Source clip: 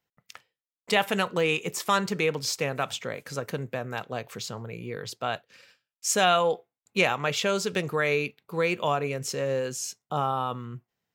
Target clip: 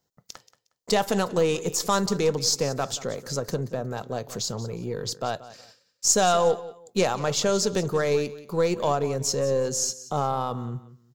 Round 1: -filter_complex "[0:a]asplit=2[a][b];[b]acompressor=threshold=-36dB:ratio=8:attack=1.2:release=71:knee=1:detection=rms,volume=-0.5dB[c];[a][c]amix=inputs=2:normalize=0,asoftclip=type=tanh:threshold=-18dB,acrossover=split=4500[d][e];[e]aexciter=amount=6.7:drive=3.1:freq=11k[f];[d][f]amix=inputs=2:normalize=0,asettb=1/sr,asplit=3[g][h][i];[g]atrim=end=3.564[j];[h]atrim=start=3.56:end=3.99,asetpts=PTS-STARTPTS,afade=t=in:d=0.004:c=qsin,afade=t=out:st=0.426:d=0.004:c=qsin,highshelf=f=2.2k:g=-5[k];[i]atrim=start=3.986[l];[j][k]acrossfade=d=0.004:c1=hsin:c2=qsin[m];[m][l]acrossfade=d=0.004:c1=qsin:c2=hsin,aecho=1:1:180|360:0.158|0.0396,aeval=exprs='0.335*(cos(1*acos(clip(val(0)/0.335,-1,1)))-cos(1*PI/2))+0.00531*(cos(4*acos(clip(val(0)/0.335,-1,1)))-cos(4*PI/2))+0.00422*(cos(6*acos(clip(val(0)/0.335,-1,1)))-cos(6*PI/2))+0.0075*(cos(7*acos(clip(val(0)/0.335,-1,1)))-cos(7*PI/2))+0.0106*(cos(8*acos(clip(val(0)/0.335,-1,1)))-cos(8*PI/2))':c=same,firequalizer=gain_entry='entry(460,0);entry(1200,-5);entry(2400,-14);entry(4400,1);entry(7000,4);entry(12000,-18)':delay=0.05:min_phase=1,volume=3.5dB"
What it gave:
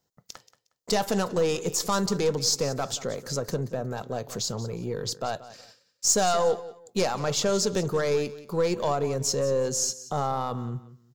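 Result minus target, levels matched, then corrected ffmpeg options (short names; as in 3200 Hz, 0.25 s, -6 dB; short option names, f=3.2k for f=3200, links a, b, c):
soft clip: distortion +12 dB
-filter_complex "[0:a]asplit=2[a][b];[b]acompressor=threshold=-36dB:ratio=8:attack=1.2:release=71:knee=1:detection=rms,volume=-0.5dB[c];[a][c]amix=inputs=2:normalize=0,asoftclip=type=tanh:threshold=-9dB,acrossover=split=4500[d][e];[e]aexciter=amount=6.7:drive=3.1:freq=11k[f];[d][f]amix=inputs=2:normalize=0,asettb=1/sr,asplit=3[g][h][i];[g]atrim=end=3.564[j];[h]atrim=start=3.56:end=3.99,asetpts=PTS-STARTPTS,afade=t=in:d=0.004:c=qsin,afade=t=out:st=0.426:d=0.004:c=qsin,highshelf=f=2.2k:g=-5[k];[i]atrim=start=3.986[l];[j][k]acrossfade=d=0.004:c1=hsin:c2=qsin[m];[m][l]acrossfade=d=0.004:c1=qsin:c2=hsin,aecho=1:1:180|360:0.158|0.0396,aeval=exprs='0.335*(cos(1*acos(clip(val(0)/0.335,-1,1)))-cos(1*PI/2))+0.00531*(cos(4*acos(clip(val(0)/0.335,-1,1)))-cos(4*PI/2))+0.00422*(cos(6*acos(clip(val(0)/0.335,-1,1)))-cos(6*PI/2))+0.0075*(cos(7*acos(clip(val(0)/0.335,-1,1)))-cos(7*PI/2))+0.0106*(cos(8*acos(clip(val(0)/0.335,-1,1)))-cos(8*PI/2))':c=same,firequalizer=gain_entry='entry(460,0);entry(1200,-5);entry(2400,-14);entry(4400,1);entry(7000,4);entry(12000,-18)':delay=0.05:min_phase=1,volume=3.5dB"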